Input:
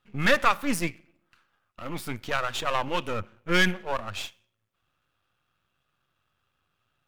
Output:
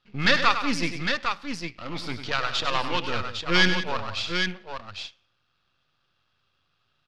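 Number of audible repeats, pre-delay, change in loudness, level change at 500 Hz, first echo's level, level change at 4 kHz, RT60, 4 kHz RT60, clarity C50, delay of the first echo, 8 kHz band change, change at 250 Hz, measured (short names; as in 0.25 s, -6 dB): 3, none, +1.5 dB, -1.0 dB, -9.5 dB, +7.0 dB, none, none, none, 99 ms, -0.5 dB, +1.5 dB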